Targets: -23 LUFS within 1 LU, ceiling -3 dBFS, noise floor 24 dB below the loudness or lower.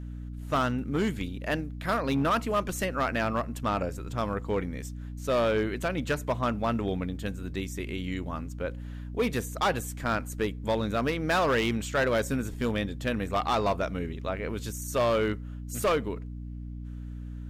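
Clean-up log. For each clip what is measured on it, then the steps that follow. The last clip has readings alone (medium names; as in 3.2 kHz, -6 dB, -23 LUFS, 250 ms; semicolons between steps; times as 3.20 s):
clipped samples 1.7%; clipping level -20.0 dBFS; hum 60 Hz; highest harmonic 300 Hz; hum level -36 dBFS; loudness -29.5 LUFS; peak level -20.0 dBFS; loudness target -23.0 LUFS
-> clip repair -20 dBFS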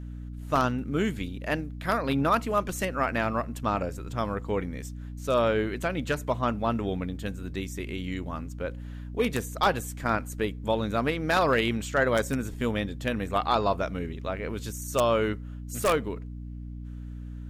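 clipped samples 0.0%; hum 60 Hz; highest harmonic 300 Hz; hum level -35 dBFS
-> de-hum 60 Hz, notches 5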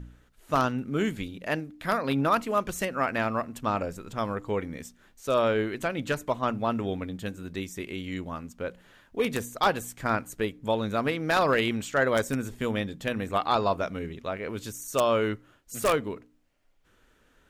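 hum not found; loudness -29.0 LUFS; peak level -10.5 dBFS; loudness target -23.0 LUFS
-> trim +6 dB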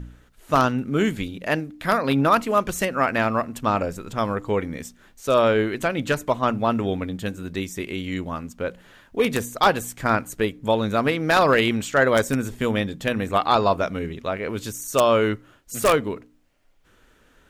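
loudness -23.0 LUFS; peak level -4.5 dBFS; noise floor -57 dBFS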